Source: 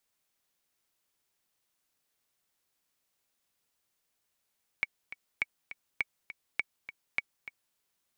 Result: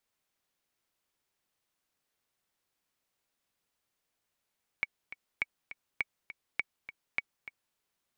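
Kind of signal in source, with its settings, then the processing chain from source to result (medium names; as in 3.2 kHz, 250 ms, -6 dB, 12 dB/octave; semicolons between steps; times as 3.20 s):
metronome 204 bpm, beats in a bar 2, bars 5, 2.25 kHz, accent 13.5 dB -15 dBFS
treble shelf 4.4 kHz -6 dB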